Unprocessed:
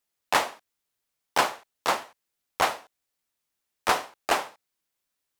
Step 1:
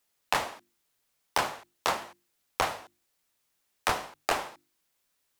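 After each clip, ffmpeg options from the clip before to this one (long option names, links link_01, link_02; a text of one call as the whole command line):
ffmpeg -i in.wav -filter_complex "[0:a]bandreject=frequency=50:width_type=h:width=6,bandreject=frequency=100:width_type=h:width=6,bandreject=frequency=150:width_type=h:width=6,bandreject=frequency=200:width_type=h:width=6,bandreject=frequency=250:width_type=h:width=6,bandreject=frequency=300:width_type=h:width=6,bandreject=frequency=350:width_type=h:width=6,acrossover=split=140[link_01][link_02];[link_02]acompressor=threshold=-31dB:ratio=6[link_03];[link_01][link_03]amix=inputs=2:normalize=0,volume=6dB" out.wav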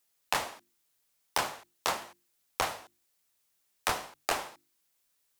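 ffmpeg -i in.wav -af "highshelf=frequency=4400:gain=6,volume=-3.5dB" out.wav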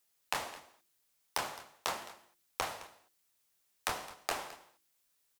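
ffmpeg -i in.wav -af "acompressor=threshold=-33dB:ratio=2,aecho=1:1:214:0.133,volume=-1dB" out.wav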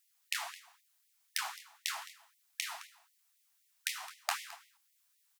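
ffmpeg -i in.wav -af "afftfilt=real='re*gte(b*sr/1024,630*pow(1900/630,0.5+0.5*sin(2*PI*3.9*pts/sr)))':imag='im*gte(b*sr/1024,630*pow(1900/630,0.5+0.5*sin(2*PI*3.9*pts/sr)))':win_size=1024:overlap=0.75,volume=2dB" out.wav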